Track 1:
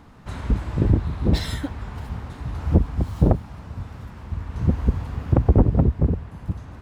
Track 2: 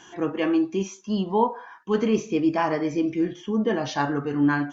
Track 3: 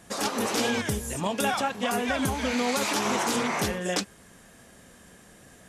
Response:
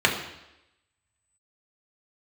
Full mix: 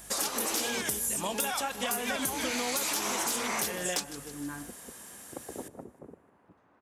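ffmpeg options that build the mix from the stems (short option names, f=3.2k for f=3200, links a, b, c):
-filter_complex "[0:a]highpass=f=180:p=1,acrossover=split=250 2400:gain=0.0891 1 0.251[a][b][c];[a][b][c]amix=inputs=3:normalize=0,volume=-16.5dB,asplit=2[d][e];[e]volume=-18dB[f];[1:a]aeval=exprs='val(0)+0.0112*(sin(2*PI*50*n/s)+sin(2*PI*2*50*n/s)/2+sin(2*PI*3*50*n/s)/3+sin(2*PI*4*50*n/s)/4+sin(2*PI*5*50*n/s)/5)':c=same,volume=-18dB[g];[2:a]aemphasis=mode=production:type=bsi,volume=-0.5dB,asplit=2[h][i];[i]volume=-21dB[j];[f][j]amix=inputs=2:normalize=0,aecho=0:1:154|308|462|616|770|924|1078:1|0.49|0.24|0.118|0.0576|0.0282|0.0138[k];[d][g][h][k]amix=inputs=4:normalize=0,asoftclip=type=tanh:threshold=-13dB,acompressor=threshold=-28dB:ratio=6"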